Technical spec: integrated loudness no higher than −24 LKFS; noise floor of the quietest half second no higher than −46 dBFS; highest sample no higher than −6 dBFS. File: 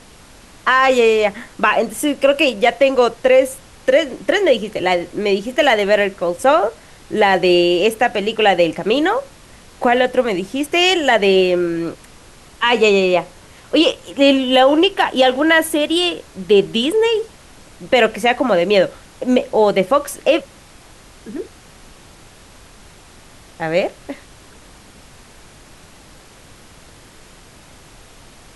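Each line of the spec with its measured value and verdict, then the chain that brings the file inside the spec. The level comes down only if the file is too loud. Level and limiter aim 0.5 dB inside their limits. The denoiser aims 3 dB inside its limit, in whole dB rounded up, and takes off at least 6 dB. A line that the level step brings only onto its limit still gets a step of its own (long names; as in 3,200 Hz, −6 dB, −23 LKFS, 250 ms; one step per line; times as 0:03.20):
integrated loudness −15.5 LKFS: out of spec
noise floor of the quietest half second −43 dBFS: out of spec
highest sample −2.5 dBFS: out of spec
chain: level −9 dB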